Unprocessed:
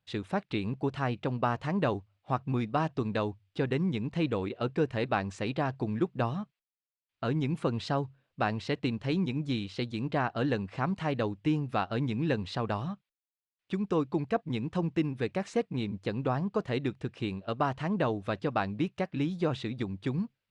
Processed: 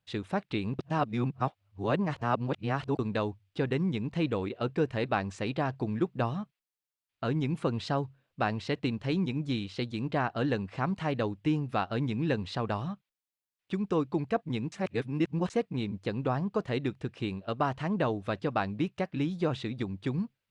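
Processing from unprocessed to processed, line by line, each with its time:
0.79–2.99 s: reverse
14.72–15.50 s: reverse

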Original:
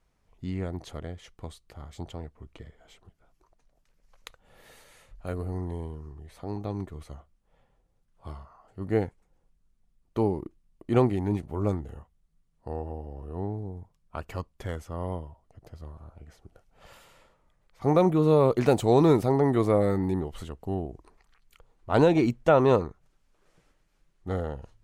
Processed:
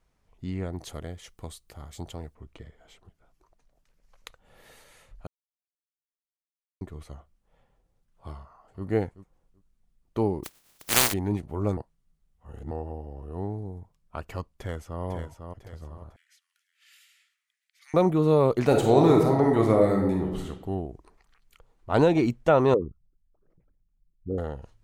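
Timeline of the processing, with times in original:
0.78–2.35 s: treble shelf 6.3 kHz +12 dB
5.27–6.81 s: mute
8.36–8.85 s: echo throw 380 ms, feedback 15%, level -14 dB
10.43–11.12 s: spectral contrast reduction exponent 0.13
11.77–12.71 s: reverse
13.32–13.79 s: treble shelf 5.3 kHz +5.5 dB
14.52–15.03 s: echo throw 500 ms, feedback 40%, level -6 dB
16.16–17.94 s: steep high-pass 1.8 kHz
18.66–20.47 s: reverb throw, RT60 0.87 s, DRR 1 dB
22.74–24.38 s: resonances exaggerated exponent 3

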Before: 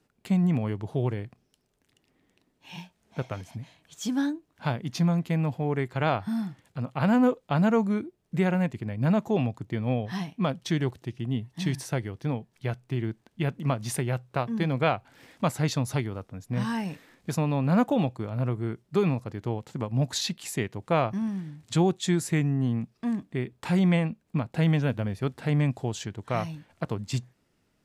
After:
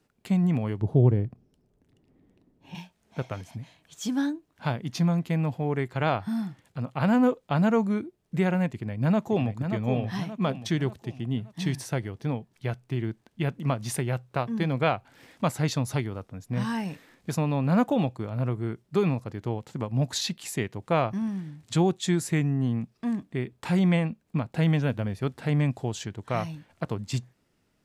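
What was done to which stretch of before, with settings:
0.81–2.75 s: tilt shelf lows +9.5 dB, about 820 Hz
8.72–9.63 s: echo throw 580 ms, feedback 45%, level -7.5 dB

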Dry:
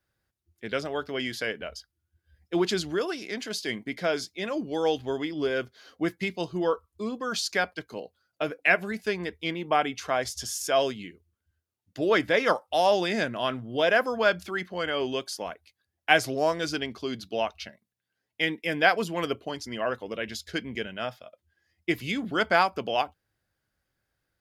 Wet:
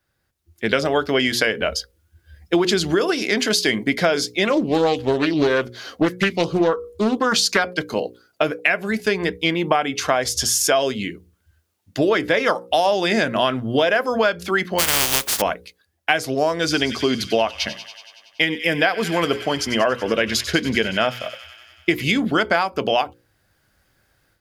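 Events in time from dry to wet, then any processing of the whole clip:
4.45–7.63 s: loudspeaker Doppler distortion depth 0.37 ms
14.78–15.40 s: spectral contrast reduction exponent 0.14
16.61–22.05 s: feedback echo behind a high-pass 94 ms, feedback 75%, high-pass 2.1 kHz, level -12.5 dB
whole clip: level rider gain up to 10.5 dB; hum notches 60/120/180/240/300/360/420/480/540 Hz; compression 10:1, threshold -21 dBFS; trim +6.5 dB

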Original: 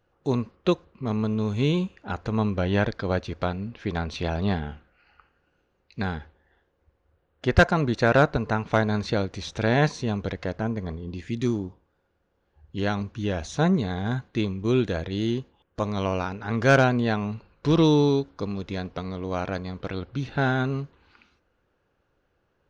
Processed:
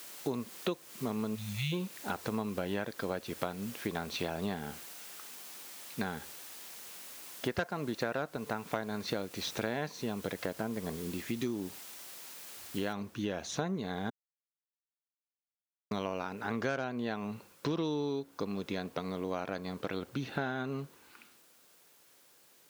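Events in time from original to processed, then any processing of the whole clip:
1.35–1.72 s: spectral selection erased 210–1800 Hz
12.93 s: noise floor step -48 dB -63 dB
14.10–15.91 s: mute
whole clip: high-pass 190 Hz 12 dB/octave; compression 6:1, threshold -31 dBFS

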